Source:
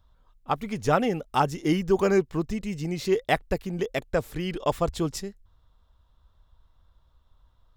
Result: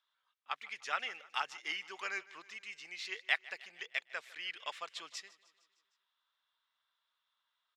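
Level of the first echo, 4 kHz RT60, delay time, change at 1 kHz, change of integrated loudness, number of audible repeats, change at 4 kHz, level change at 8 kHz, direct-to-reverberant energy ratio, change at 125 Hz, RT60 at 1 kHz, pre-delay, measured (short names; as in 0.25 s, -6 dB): -20.5 dB, none, 0.153 s, -14.5 dB, -13.0 dB, 4, -3.5 dB, -11.5 dB, none, under -40 dB, none, none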